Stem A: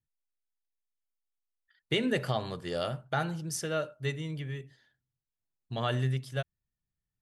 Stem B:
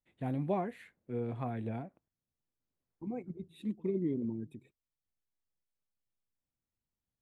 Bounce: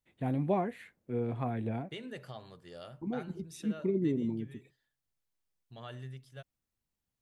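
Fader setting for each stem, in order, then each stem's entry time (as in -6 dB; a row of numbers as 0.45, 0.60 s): -15.0, +3.0 dB; 0.00, 0.00 s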